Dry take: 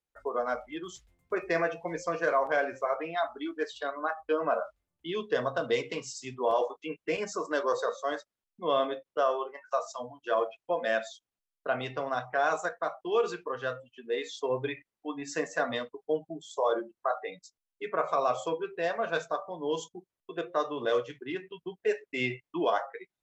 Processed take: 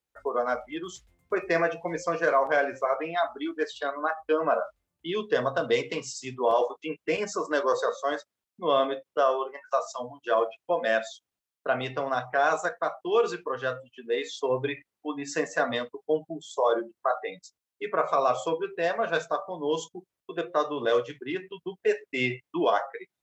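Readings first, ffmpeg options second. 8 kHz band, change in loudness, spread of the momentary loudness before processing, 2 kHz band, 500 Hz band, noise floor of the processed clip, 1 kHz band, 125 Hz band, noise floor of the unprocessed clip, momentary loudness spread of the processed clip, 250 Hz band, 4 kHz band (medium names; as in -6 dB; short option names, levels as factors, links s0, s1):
no reading, +3.5 dB, 11 LU, +3.5 dB, +3.5 dB, under -85 dBFS, +3.5 dB, +3.5 dB, under -85 dBFS, 11 LU, +3.5 dB, +3.5 dB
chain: -af "highpass=41,volume=1.5"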